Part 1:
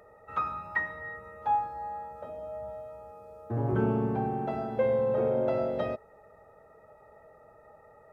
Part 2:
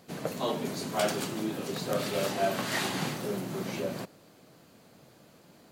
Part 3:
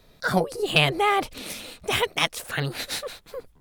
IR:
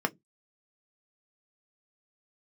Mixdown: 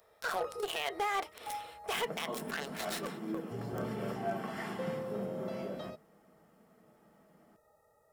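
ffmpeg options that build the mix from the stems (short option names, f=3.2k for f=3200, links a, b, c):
-filter_complex "[0:a]aexciter=amount=6.6:drive=4:freq=3.3k,volume=-13.5dB[a];[1:a]bandreject=f=3.8k:w=7.7,adelay=1850,volume=-8.5dB,asplit=2[b][c];[c]volume=-10dB[d];[2:a]highpass=f=460:w=0.5412,highpass=f=460:w=1.3066,alimiter=limit=-16.5dB:level=0:latency=1:release=20,volume=0.5dB,asplit=2[e][f];[f]volume=-16.5dB[g];[b][e]amix=inputs=2:normalize=0,acrusher=bits=3:mix=0:aa=0.5,acompressor=threshold=-31dB:ratio=6,volume=0dB[h];[3:a]atrim=start_sample=2205[i];[d][g]amix=inputs=2:normalize=0[j];[j][i]afir=irnorm=-1:irlink=0[k];[a][h][k]amix=inputs=3:normalize=0,alimiter=level_in=0.5dB:limit=-24dB:level=0:latency=1:release=39,volume=-0.5dB"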